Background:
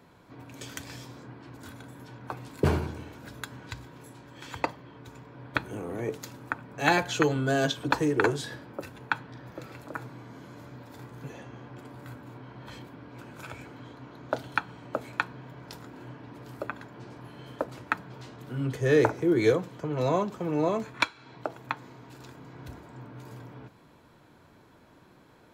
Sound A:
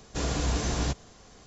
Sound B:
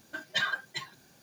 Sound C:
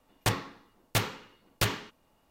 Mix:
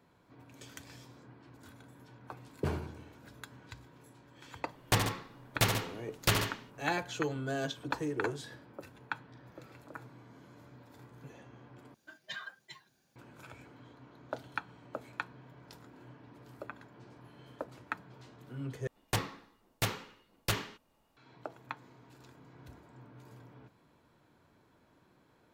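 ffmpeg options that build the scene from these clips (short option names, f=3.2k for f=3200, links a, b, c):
-filter_complex "[3:a]asplit=2[a][b];[0:a]volume=-9.5dB[c];[a]aecho=1:1:75.8|139.9:0.447|0.316[d];[2:a]highshelf=f=11k:g=-3[e];[c]asplit=3[f][g][h];[f]atrim=end=11.944[i];[e]atrim=end=1.22,asetpts=PTS-STARTPTS,volume=-13.5dB[j];[g]atrim=start=13.156:end=18.874[k];[b]atrim=end=2.3,asetpts=PTS-STARTPTS,volume=-4.5dB[l];[h]atrim=start=21.166[m];[d]atrim=end=2.3,asetpts=PTS-STARTPTS,volume=-0.5dB,afade=t=in:d=0.004:c=hsin,afade=t=out:st=2.296:d=0.004:c=hsin,adelay=4660[n];[i][j]acrossfade=d=0.004:c1=hsin:c2=hsin[o];[o][k]acrossfade=d=0.004:c1=hsin:c2=hsin[p];[p][l]acrossfade=d=0.004:c1=hsin:c2=hsin[q];[q][m]acrossfade=d=0.004:c1=hsin:c2=hsin[r];[r][n]amix=inputs=2:normalize=0"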